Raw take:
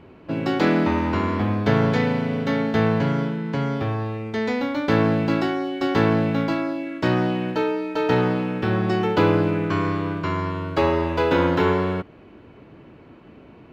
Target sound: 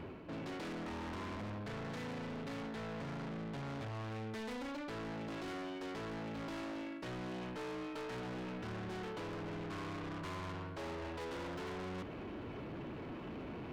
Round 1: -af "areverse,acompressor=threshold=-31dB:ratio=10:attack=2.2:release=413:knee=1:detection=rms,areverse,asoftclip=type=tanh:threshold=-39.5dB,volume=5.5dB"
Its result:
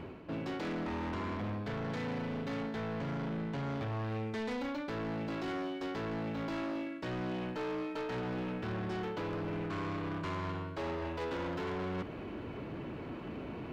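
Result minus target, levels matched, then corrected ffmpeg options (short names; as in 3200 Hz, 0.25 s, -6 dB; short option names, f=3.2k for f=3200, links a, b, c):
soft clip: distortion -4 dB
-af "areverse,acompressor=threshold=-31dB:ratio=10:attack=2.2:release=413:knee=1:detection=rms,areverse,asoftclip=type=tanh:threshold=-47dB,volume=5.5dB"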